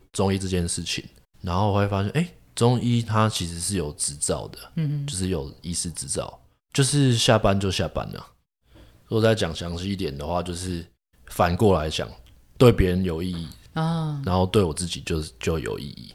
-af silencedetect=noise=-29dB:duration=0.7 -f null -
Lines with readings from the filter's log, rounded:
silence_start: 8.19
silence_end: 9.11 | silence_duration: 0.92